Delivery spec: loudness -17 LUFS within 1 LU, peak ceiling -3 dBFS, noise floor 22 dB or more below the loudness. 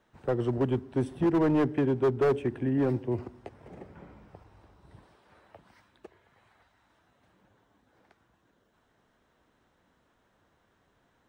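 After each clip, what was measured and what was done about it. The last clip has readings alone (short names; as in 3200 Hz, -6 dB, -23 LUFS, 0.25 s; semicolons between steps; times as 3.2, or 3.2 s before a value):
clipped 1.6%; flat tops at -20.0 dBFS; loudness -28.0 LUFS; peak -20.0 dBFS; loudness target -17.0 LUFS
-> clip repair -20 dBFS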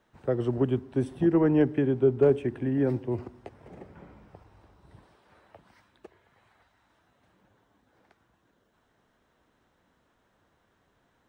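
clipped 0.0%; loudness -26.0 LUFS; peak -11.0 dBFS; loudness target -17.0 LUFS
-> gain +9 dB; limiter -3 dBFS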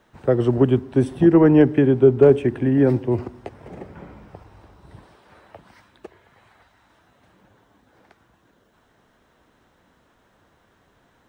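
loudness -17.0 LUFS; peak -3.0 dBFS; noise floor -62 dBFS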